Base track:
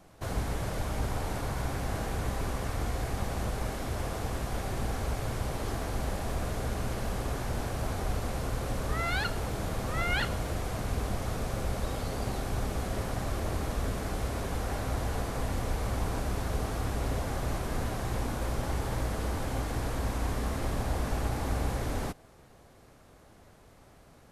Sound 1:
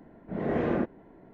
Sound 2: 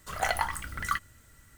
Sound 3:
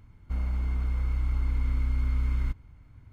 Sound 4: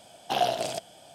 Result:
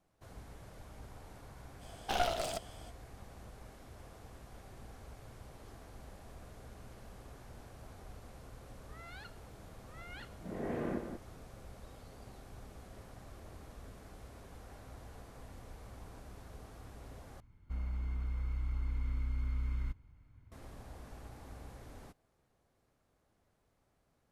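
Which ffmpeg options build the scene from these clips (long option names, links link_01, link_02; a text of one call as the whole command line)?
ffmpeg -i bed.wav -i cue0.wav -i cue1.wav -i cue2.wav -i cue3.wav -filter_complex "[0:a]volume=-19.5dB[link_01];[4:a]aeval=exprs='clip(val(0),-1,0.02)':channel_layout=same[link_02];[1:a]asplit=2[link_03][link_04];[link_04]adelay=180.8,volume=-7dB,highshelf=frequency=4000:gain=-4.07[link_05];[link_03][link_05]amix=inputs=2:normalize=0[link_06];[link_01]asplit=2[link_07][link_08];[link_07]atrim=end=17.404[link_09];[3:a]atrim=end=3.12,asetpts=PTS-STARTPTS,volume=-9dB[link_10];[link_08]atrim=start=20.516[link_11];[link_02]atrim=end=1.14,asetpts=PTS-STARTPTS,volume=-4dB,afade=type=in:duration=0.05,afade=type=out:start_time=1.09:duration=0.05,adelay=1790[link_12];[link_06]atrim=end=1.33,asetpts=PTS-STARTPTS,volume=-10.5dB,afade=type=in:duration=0.004:curve=hsin,afade=type=out:start_time=1.326:duration=0.004:curve=hsin,adelay=10140[link_13];[link_09][link_10]acrossfade=duration=0.004:curve1=hsin:curve2=hsin[link_14];[link_14][link_11]acrossfade=duration=0.004:curve1=hsin:curve2=hsin[link_15];[link_15][link_12][link_13]amix=inputs=3:normalize=0" out.wav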